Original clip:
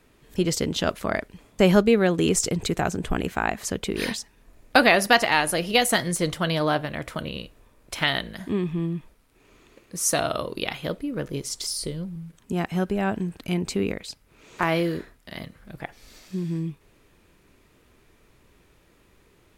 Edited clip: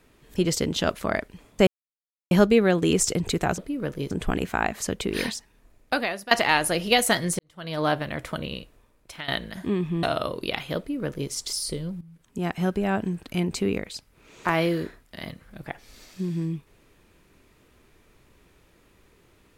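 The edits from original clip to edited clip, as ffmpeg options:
ffmpeg -i in.wav -filter_complex "[0:a]asplit=9[link_01][link_02][link_03][link_04][link_05][link_06][link_07][link_08][link_09];[link_01]atrim=end=1.67,asetpts=PTS-STARTPTS,afade=type=out:start_time=1.666:duration=0.004:curve=hsin,apad=pad_dur=0.64[link_10];[link_02]atrim=start=1.67:end=2.942,asetpts=PTS-STARTPTS,afade=type=in:duration=0.004:curve=hsin[link_11];[link_03]atrim=start=10.918:end=11.452[link_12];[link_04]atrim=start=2.938:end=5.14,asetpts=PTS-STARTPTS,afade=type=out:start_time=1.092:duration=1.11:silence=0.1[link_13];[link_05]atrim=start=5.14:end=6.22,asetpts=PTS-STARTPTS,afade=type=in:duration=0.004:curve=hsin:silence=0.1,afade=type=out:start_time=1.076:duration=0.004:curve=hsin[link_14];[link_06]atrim=start=6.22:end=8.11,asetpts=PTS-STARTPTS,afade=type=in:duration=0.49:curve=qua,afade=type=out:start_time=1.13:duration=0.76:silence=0.141254[link_15];[link_07]atrim=start=8.11:end=8.862,asetpts=PTS-STARTPTS,afade=type=in:duration=0.004:curve=hsin:silence=0.141254[link_16];[link_08]atrim=start=10.168:end=12.15,asetpts=PTS-STARTPTS,afade=type=out:start_time=1.978:duration=0.004:curve=hsin:silence=0.188365[link_17];[link_09]atrim=start=12.15,asetpts=PTS-STARTPTS,afade=type=in:duration=0.55:silence=0.188365[link_18];[link_10][link_11]concat=n=2:v=0:a=1[link_19];[link_19][link_12]acrossfade=duration=0.004:curve1=hsin:curve2=hsin[link_20];[link_13][link_14][link_15][link_16]concat=n=4:v=0:a=1[link_21];[link_20][link_21]acrossfade=duration=0.004:curve1=hsin:curve2=hsin[link_22];[link_17][link_18]concat=n=2:v=0:a=1[link_23];[link_22][link_23]acrossfade=duration=0.004:curve1=hsin:curve2=hsin" out.wav

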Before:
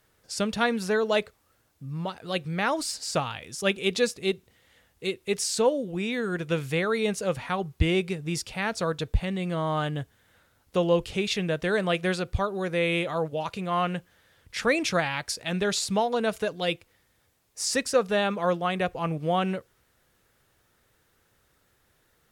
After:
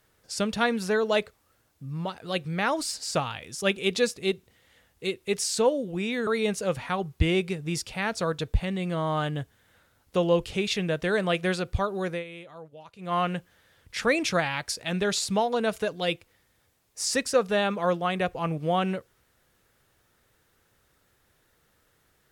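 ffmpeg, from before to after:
ffmpeg -i in.wav -filter_complex "[0:a]asplit=4[link_01][link_02][link_03][link_04];[link_01]atrim=end=6.272[link_05];[link_02]atrim=start=6.868:end=12.84,asetpts=PTS-STARTPTS,afade=type=out:start_time=5.822:duration=0.15:silence=0.149624[link_06];[link_03]atrim=start=12.84:end=13.58,asetpts=PTS-STARTPTS,volume=-16.5dB[link_07];[link_04]atrim=start=13.58,asetpts=PTS-STARTPTS,afade=type=in:duration=0.15:silence=0.149624[link_08];[link_06][link_07][link_08]concat=n=3:v=0:a=1[link_09];[link_05][link_09]acrossfade=duration=0.004:curve1=hsin:curve2=hsin" out.wav

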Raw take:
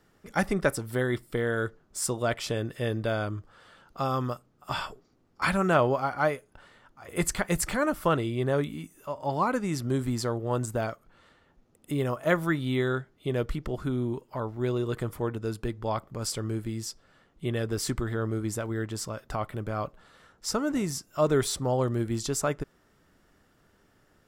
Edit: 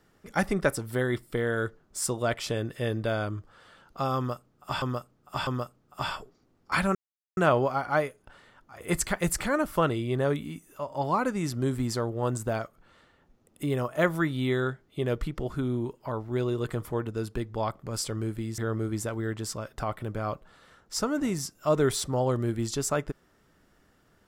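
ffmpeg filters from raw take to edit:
ffmpeg -i in.wav -filter_complex "[0:a]asplit=5[link_01][link_02][link_03][link_04][link_05];[link_01]atrim=end=4.822[link_06];[link_02]atrim=start=4.168:end=4.822[link_07];[link_03]atrim=start=4.168:end=5.65,asetpts=PTS-STARTPTS,afade=type=out:start_time=1.478:duration=0.004:curve=hsin,apad=pad_dur=0.42[link_08];[link_04]atrim=start=5.65:end=16.862,asetpts=PTS-STARTPTS,afade=type=in:duration=0.004:curve=hsin[link_09];[link_05]atrim=start=18.098[link_10];[link_06][link_07]acrossfade=duration=0.004:curve1=hsin:curve2=hsin[link_11];[link_08][link_09]concat=n=2:v=0:a=1[link_12];[link_11][link_12]acrossfade=duration=0.004:curve1=hsin:curve2=hsin[link_13];[link_13][link_10]acrossfade=duration=0.004:curve1=hsin:curve2=hsin" out.wav

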